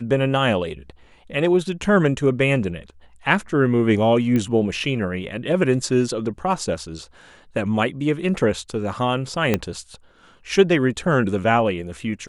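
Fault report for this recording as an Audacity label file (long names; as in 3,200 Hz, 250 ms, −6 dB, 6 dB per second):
4.360000	4.360000	click −12 dBFS
9.540000	9.540000	click −5 dBFS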